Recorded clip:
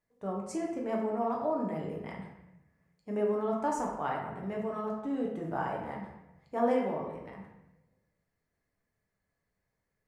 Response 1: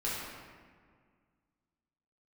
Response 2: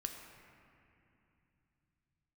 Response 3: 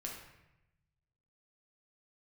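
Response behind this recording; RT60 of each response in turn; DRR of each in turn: 3; 1.9, 2.8, 0.90 seconds; −8.5, 3.0, −2.0 decibels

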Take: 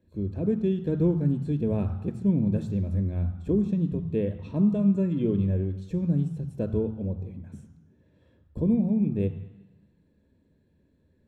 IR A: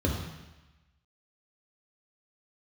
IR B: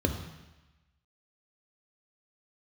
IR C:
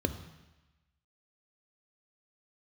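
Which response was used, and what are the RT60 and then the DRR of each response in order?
C; 1.1, 1.1, 1.1 seconds; 0.5, 6.0, 10.5 decibels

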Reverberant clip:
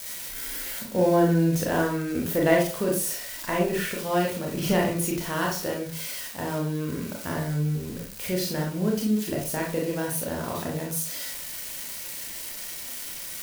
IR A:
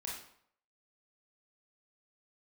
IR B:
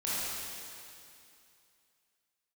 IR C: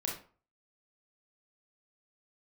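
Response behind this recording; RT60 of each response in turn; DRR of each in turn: C; 0.65, 2.6, 0.40 seconds; −3.5, −10.0, −2.0 decibels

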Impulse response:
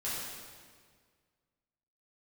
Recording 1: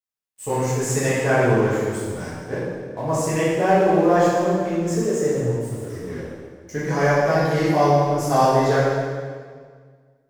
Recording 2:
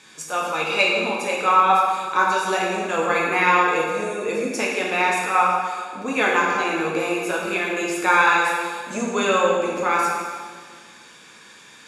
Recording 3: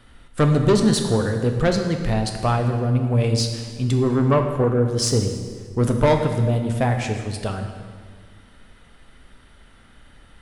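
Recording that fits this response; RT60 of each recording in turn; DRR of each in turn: 1; 1.8, 1.8, 1.8 seconds; −10.0, −3.5, 4.0 decibels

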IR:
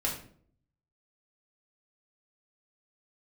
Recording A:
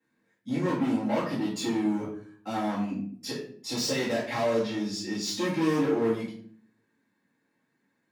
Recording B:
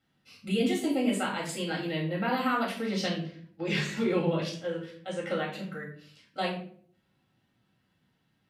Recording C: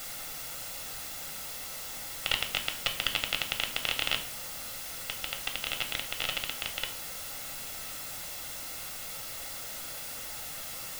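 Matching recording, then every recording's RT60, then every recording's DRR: B; 0.55, 0.55, 0.55 seconds; −12.0, −3.5, 5.0 decibels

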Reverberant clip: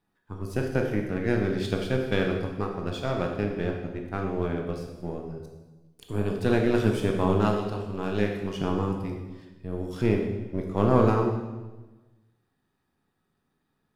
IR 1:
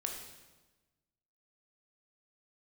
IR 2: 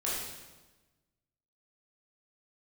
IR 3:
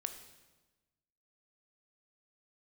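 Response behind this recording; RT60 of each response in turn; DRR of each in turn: 1; 1.2, 1.2, 1.2 seconds; 1.5, −7.5, 7.0 decibels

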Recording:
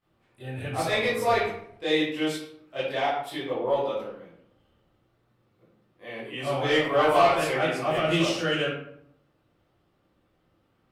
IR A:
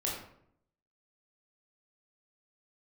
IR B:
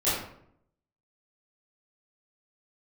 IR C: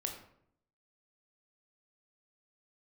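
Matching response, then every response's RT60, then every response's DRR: B; 0.70, 0.70, 0.70 seconds; −4.5, −13.5, 2.0 decibels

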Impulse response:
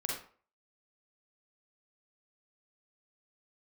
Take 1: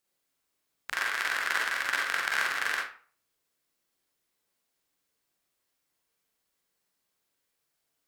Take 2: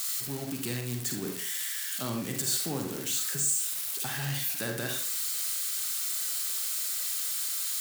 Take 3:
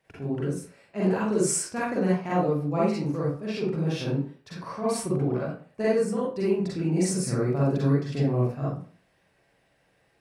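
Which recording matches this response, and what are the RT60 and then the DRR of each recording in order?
1; 0.45, 0.45, 0.45 seconds; −3.0, 2.5, −8.0 decibels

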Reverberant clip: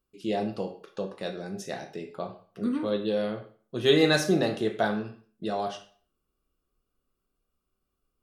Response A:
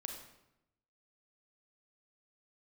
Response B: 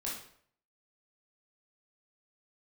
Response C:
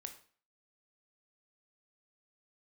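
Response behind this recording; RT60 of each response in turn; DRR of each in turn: C; 0.85, 0.60, 0.45 seconds; 2.5, −5.5, 6.0 decibels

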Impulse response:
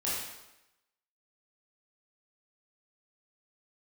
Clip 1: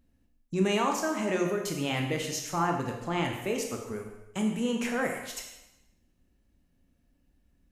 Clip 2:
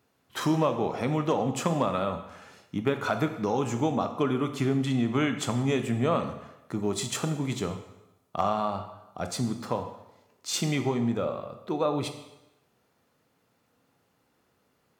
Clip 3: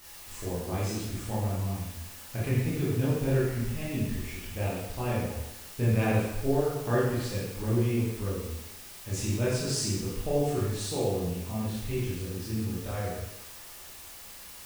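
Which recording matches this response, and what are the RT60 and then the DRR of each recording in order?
3; 0.95, 0.95, 0.95 seconds; 1.5, 7.0, −8.5 decibels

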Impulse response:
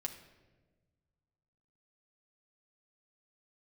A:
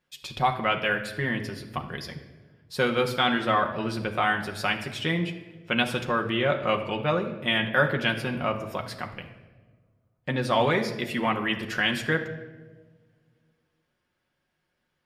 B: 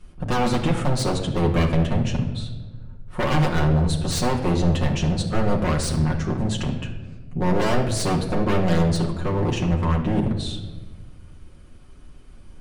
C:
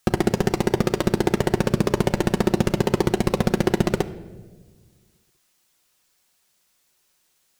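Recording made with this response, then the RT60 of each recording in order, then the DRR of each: A; 1.3, 1.3, 1.4 seconds; 2.0, −2.5, 7.5 decibels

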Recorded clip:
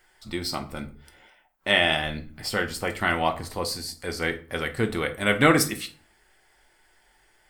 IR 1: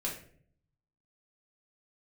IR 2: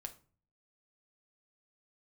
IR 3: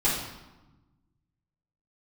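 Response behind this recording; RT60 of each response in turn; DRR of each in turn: 2; 0.55, 0.40, 1.1 seconds; −4.5, 5.5, −10.5 decibels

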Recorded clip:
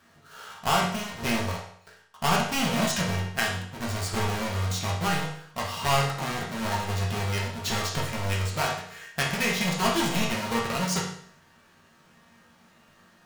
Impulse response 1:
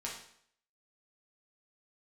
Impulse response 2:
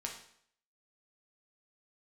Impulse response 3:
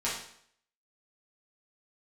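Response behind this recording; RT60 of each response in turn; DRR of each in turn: 1; 0.65, 0.65, 0.65 seconds; −4.5, −0.5, −9.0 decibels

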